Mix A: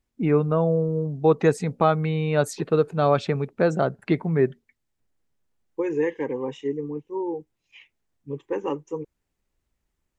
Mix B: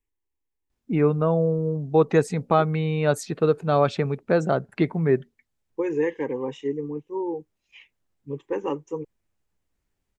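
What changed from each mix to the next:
first voice: entry +0.70 s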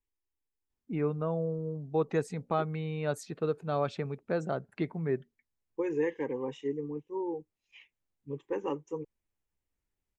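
first voice -10.5 dB; second voice -6.0 dB

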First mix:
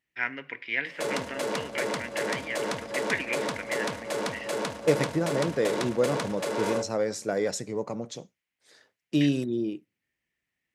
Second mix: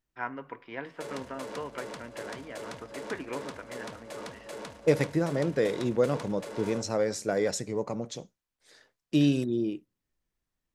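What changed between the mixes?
first voice: add resonant high shelf 1.5 kHz -10.5 dB, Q 3; background -10.5 dB; master: remove high-pass 100 Hz

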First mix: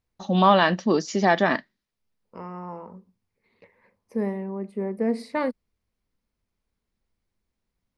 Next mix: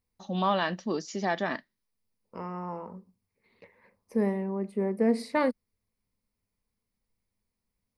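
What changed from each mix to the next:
first voice -9.5 dB; master: add treble shelf 5.9 kHz +5 dB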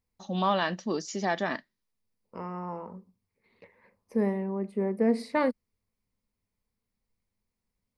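first voice: remove distance through air 90 m; master: add treble shelf 5.9 kHz -5 dB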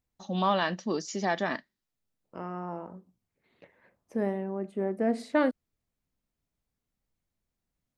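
second voice: remove rippled EQ curve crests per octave 0.89, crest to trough 9 dB

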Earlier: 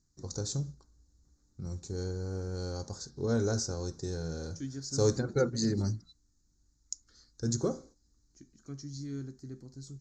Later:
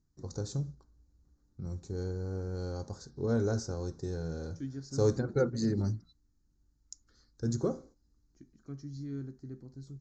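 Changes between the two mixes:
second voice: add distance through air 57 m; master: add treble shelf 3.1 kHz -11 dB

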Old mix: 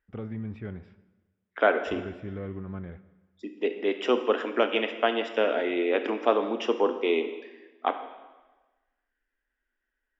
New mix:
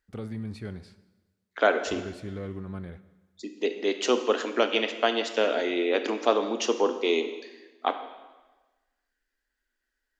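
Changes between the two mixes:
first voice: remove distance through air 75 m; master: remove Savitzky-Golay filter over 25 samples

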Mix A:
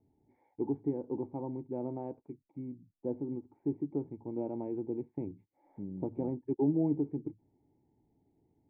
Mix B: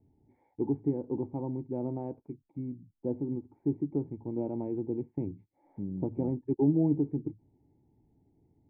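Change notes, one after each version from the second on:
master: add bass shelf 220 Hz +9 dB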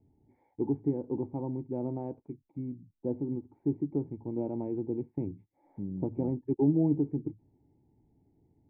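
second voice: add distance through air 500 m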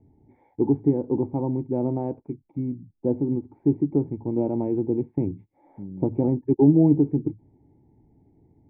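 first voice +9.0 dB

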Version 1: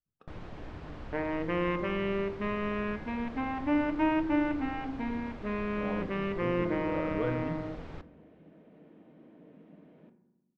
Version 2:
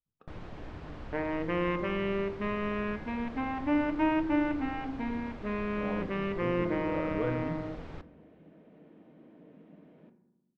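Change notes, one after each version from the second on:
speech: add treble shelf 4.3 kHz -10 dB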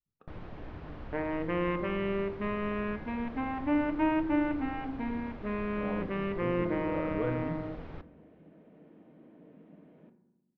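master: add distance through air 160 m

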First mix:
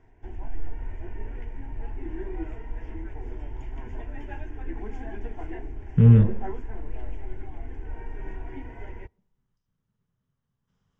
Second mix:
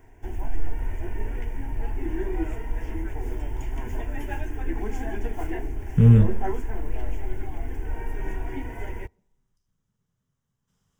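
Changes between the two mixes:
background +5.5 dB; master: remove distance through air 150 m

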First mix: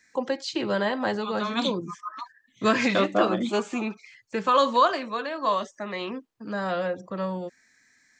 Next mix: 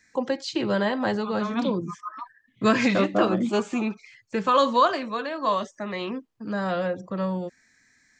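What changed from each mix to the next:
second voice: add distance through air 420 m; master: add bass shelf 170 Hz +9.5 dB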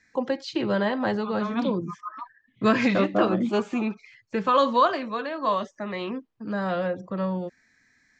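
master: add distance through air 100 m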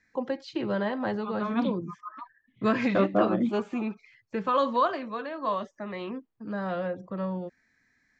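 first voice -4.0 dB; master: add treble shelf 3.7 kHz -7.5 dB

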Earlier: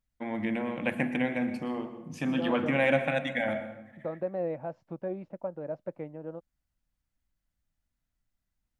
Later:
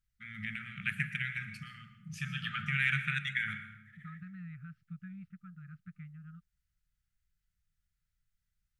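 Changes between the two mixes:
second voice: add distance through air 270 m; master: add brick-wall FIR band-stop 200–1200 Hz

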